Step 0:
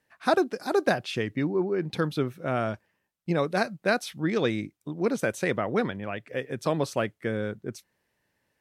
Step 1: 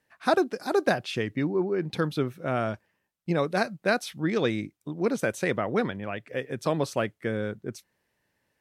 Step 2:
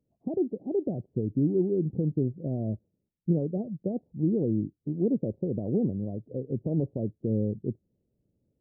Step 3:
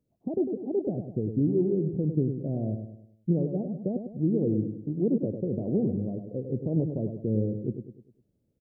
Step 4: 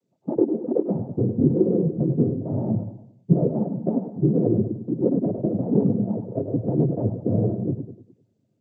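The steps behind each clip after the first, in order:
no processing that can be heard
in parallel at −0.5 dB: speech leveller 2 s; on the sum: brickwall limiter −11.5 dBFS, peak gain reduction 6.5 dB; Gaussian smoothing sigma 21 samples
repeating echo 101 ms, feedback 43%, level −7.5 dB
cochlear-implant simulation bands 16; level +6 dB

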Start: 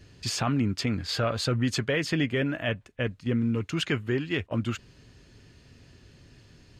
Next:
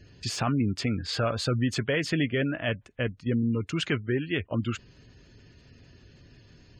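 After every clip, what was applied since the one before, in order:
de-essing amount 65%
gate on every frequency bin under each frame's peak −30 dB strong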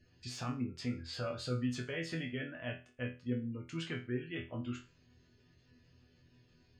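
resonators tuned to a chord E2 fifth, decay 0.32 s
level −1 dB

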